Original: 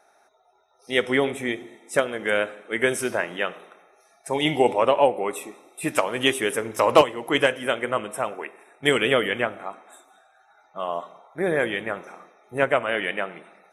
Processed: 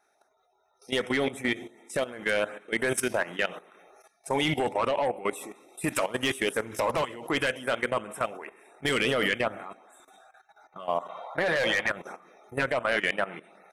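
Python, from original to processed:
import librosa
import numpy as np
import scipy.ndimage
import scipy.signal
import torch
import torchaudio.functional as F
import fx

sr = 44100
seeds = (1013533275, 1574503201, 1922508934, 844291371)

y = fx.spec_box(x, sr, start_s=11.09, length_s=0.8, low_hz=490.0, high_hz=5000.0, gain_db=11)
y = fx.dynamic_eq(y, sr, hz=400.0, q=1.6, threshold_db=-35.0, ratio=4.0, max_db=-4)
y = fx.filter_lfo_notch(y, sr, shape='saw_up', hz=2.7, low_hz=490.0, high_hz=5700.0, q=2.1)
y = 10.0 ** (-16.0 / 20.0) * np.tanh(y / 10.0 ** (-16.0 / 20.0))
y = fx.level_steps(y, sr, step_db=15)
y = F.gain(torch.from_numpy(y), 4.5).numpy()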